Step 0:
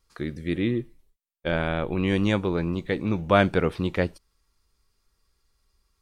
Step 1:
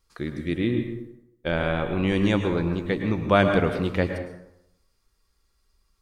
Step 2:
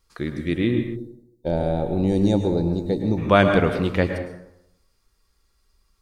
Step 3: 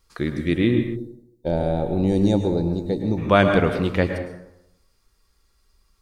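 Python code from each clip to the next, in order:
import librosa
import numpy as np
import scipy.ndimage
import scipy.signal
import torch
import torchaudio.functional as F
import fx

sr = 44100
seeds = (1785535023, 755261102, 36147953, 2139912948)

y1 = fx.rev_plate(x, sr, seeds[0], rt60_s=0.81, hf_ratio=0.6, predelay_ms=95, drr_db=6.0)
y2 = fx.spec_box(y1, sr, start_s=0.96, length_s=2.21, low_hz=940.0, high_hz=3600.0, gain_db=-18)
y2 = y2 * 10.0 ** (3.0 / 20.0)
y3 = fx.rider(y2, sr, range_db=4, speed_s=2.0)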